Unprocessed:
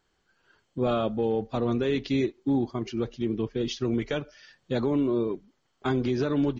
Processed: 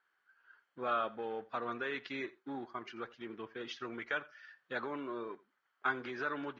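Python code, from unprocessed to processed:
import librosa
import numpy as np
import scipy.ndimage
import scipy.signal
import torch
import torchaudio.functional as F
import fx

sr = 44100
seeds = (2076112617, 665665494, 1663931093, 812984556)

p1 = np.sign(x) * np.maximum(np.abs(x) - 10.0 ** (-44.0 / 20.0), 0.0)
p2 = x + (p1 * 10.0 ** (-11.0 / 20.0))
p3 = fx.bandpass_q(p2, sr, hz=1500.0, q=2.7)
p4 = p3 + 10.0 ** (-21.5 / 20.0) * np.pad(p3, (int(85 * sr / 1000.0), 0))[:len(p3)]
y = p4 * 10.0 ** (2.5 / 20.0)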